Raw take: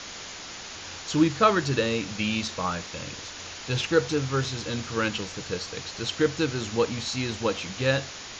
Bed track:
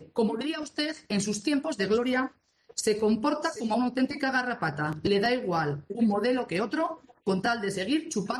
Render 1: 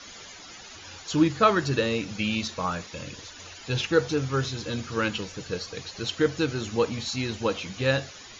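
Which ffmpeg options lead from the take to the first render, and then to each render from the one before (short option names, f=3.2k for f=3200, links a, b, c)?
-af "afftdn=nr=12:nf=-40"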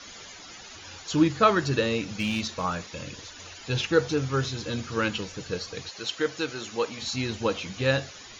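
-filter_complex "[0:a]asettb=1/sr,asplit=3[a][b][c];[a]atrim=end=2.194[d];[b]atrim=start=2.19:end=2.63,asetpts=PTS-STARTPTS,afade=t=in:d=0.004:c=qsin,afade=t=out:st=0.436:d=0.004:c=qsin,asoftclip=type=hard:threshold=-21.5dB[e];[c]atrim=start=2.626[f];[d][e]acrossfade=d=0.004:c1=hsin:c2=qsin[g];[g][f]acrossfade=d=0.004:c1=qsin:c2=hsin,asettb=1/sr,asplit=3[h][i][j];[h]atrim=end=5.894[k];[i]atrim=start=5.89:end=7.02,asetpts=PTS-STARTPTS,afade=t=in:d=0.004:c=qsin,afade=t=out:st=1.126:d=0.004:c=qsin,highpass=f=540:p=1[l];[j]atrim=start=7.016[m];[k][l]acrossfade=d=0.004:c1=hsin:c2=qsin[n];[n][m]acrossfade=d=0.004:c1=qsin:c2=hsin"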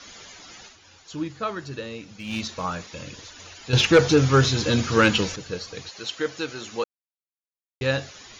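-filter_complex "[0:a]asettb=1/sr,asplit=3[a][b][c];[a]atrim=end=3.734[d];[b]atrim=start=3.73:end=5.36,asetpts=PTS-STARTPTS,afade=t=in:d=0.004:c=qsin,afade=t=out:st=1.626:d=0.004:c=qsin,aeval=exprs='0.398*sin(PI/2*2*val(0)/0.398)':c=same[e];[c]atrim=start=5.356[f];[d][e]acrossfade=d=0.004:c1=hsin:c2=qsin[g];[g][f]acrossfade=d=0.004:c1=qsin:c2=hsin,asplit=5[h][i][j][k][l];[h]atrim=end=0.78,asetpts=PTS-STARTPTS,afade=t=out:st=0.66:d=0.12:c=qua:silence=0.354813[m];[i]atrim=start=0.78:end=2.22,asetpts=PTS-STARTPTS,volume=-9dB[n];[j]atrim=start=2.22:end=6.84,asetpts=PTS-STARTPTS,afade=t=in:d=0.12:c=qua:silence=0.354813,afade=t=out:st=4.616:d=0.004:c=hsin[o];[k]atrim=start=6.84:end=7.81,asetpts=PTS-STARTPTS,volume=0[p];[l]atrim=start=7.81,asetpts=PTS-STARTPTS,afade=t=in:d=0.004:c=hsin[q];[m][n][o][p][q]concat=n=5:v=0:a=1"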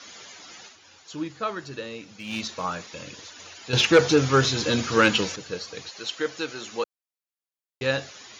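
-af "highpass=62,lowshelf=f=120:g=-12"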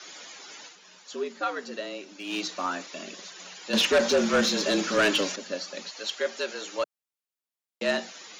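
-af "afreqshift=93,asoftclip=type=tanh:threshold=-16dB"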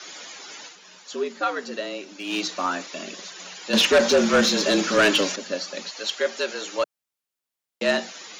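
-af "volume=4.5dB"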